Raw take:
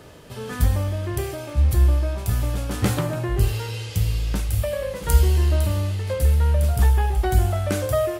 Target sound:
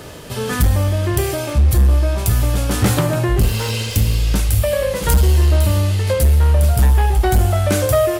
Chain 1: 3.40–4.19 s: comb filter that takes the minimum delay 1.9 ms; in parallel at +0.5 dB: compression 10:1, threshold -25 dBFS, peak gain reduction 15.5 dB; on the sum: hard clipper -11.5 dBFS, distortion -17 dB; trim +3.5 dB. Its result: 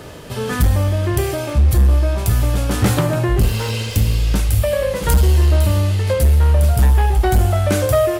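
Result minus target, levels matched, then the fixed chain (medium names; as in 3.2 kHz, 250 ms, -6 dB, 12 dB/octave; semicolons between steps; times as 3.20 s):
8 kHz band -2.5 dB
3.40–4.19 s: comb filter that takes the minimum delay 1.9 ms; in parallel at +0.5 dB: compression 10:1, threshold -25 dBFS, peak gain reduction 15.5 dB + treble shelf 3.1 kHz +7.5 dB; on the sum: hard clipper -11.5 dBFS, distortion -17 dB; trim +3.5 dB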